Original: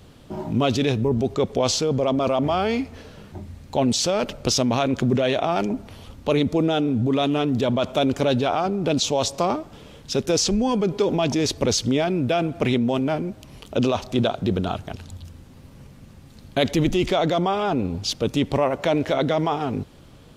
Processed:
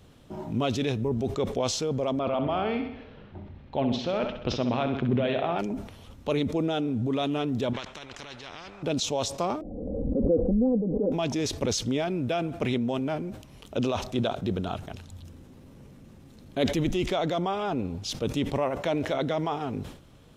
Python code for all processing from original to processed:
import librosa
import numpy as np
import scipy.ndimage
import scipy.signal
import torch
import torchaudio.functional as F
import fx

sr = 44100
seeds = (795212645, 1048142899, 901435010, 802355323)

y = fx.chain(x, sr, fx.lowpass(hz=3500.0, slope=24),
    fx.echo_feedback(ms=65, feedback_pct=55, wet_db=-8.5), at=(2.19, 5.59))
y = fx.chain(y, sr, fx.level_steps(step_db=14),
    fx.spacing_loss(db_at_10k=21),
    fx.spectral_comp(ratio=4.0), at=(7.73, 8.83))
y = fx.chain(y, sr, fx.steep_lowpass(hz=640.0, slope=48),
    fx.comb(ms=3.9, depth=0.93),
    fx.pre_swell(db_per_s=28.0), at=(9.61, 11.12))
y = fx.chain(y, sr, fx.peak_eq(hz=330.0, db=7.0, octaves=1.7),
    fx.transient(attack_db=-6, sustain_db=1), at=(15.23, 16.67))
y = fx.notch(y, sr, hz=4600.0, q=16.0)
y = fx.sustainer(y, sr, db_per_s=100.0)
y = y * librosa.db_to_amplitude(-6.5)